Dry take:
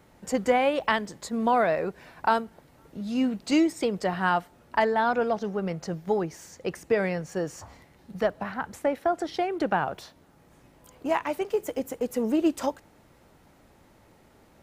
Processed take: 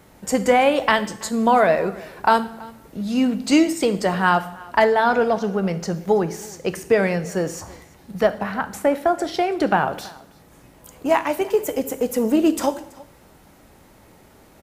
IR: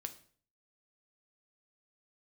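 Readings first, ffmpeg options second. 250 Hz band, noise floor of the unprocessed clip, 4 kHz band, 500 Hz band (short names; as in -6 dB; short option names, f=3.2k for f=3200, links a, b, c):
+6.5 dB, -58 dBFS, +7.5 dB, +7.0 dB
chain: -filter_complex "[0:a]aecho=1:1:329:0.0708,asplit=2[a][b];[1:a]atrim=start_sample=2205,asetrate=29547,aresample=44100,highshelf=f=6.9k:g=10[c];[b][c]afir=irnorm=-1:irlink=0,volume=2.5dB[d];[a][d]amix=inputs=2:normalize=0"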